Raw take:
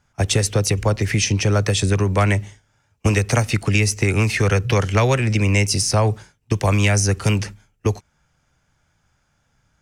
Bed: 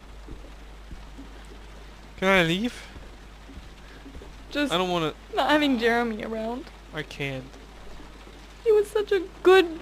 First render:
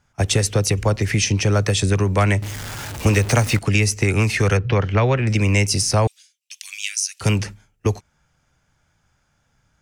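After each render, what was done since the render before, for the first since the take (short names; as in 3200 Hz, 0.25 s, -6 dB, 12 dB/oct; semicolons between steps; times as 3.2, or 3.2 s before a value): 2.42–3.59 zero-crossing step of -25 dBFS; 4.57–5.27 air absorption 240 m; 6.07–7.21 inverse Chebyshev high-pass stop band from 470 Hz, stop band 80 dB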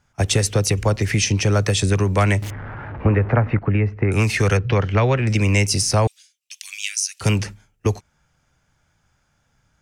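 2.5–4.12 LPF 1800 Hz 24 dB/oct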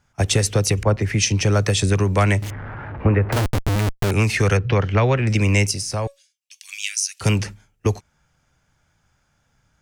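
0.83–1.41 three-band expander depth 70%; 3.32–4.11 Schmitt trigger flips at -24 dBFS; 5.71–6.69 resonator 560 Hz, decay 0.19 s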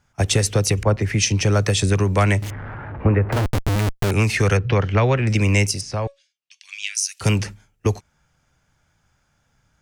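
2.77–3.53 high shelf 3300 Hz -7 dB; 5.81–6.95 LPF 4300 Hz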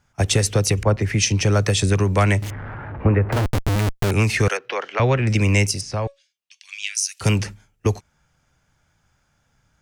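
4.48–5 Bessel high-pass 610 Hz, order 4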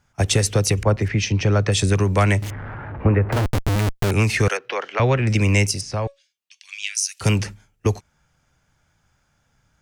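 1.08–1.72 air absorption 140 m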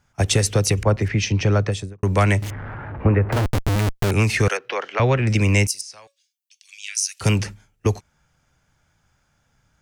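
1.52–2.03 studio fade out; 5.67–6.88 differentiator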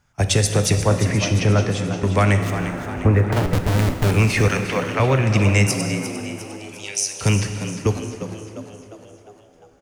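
on a send: frequency-shifting echo 0.352 s, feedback 54%, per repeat +76 Hz, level -11 dB; on the sum: plate-style reverb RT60 3 s, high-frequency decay 0.75×, DRR 6.5 dB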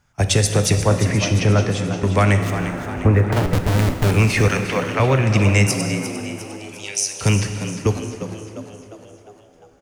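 gain +1 dB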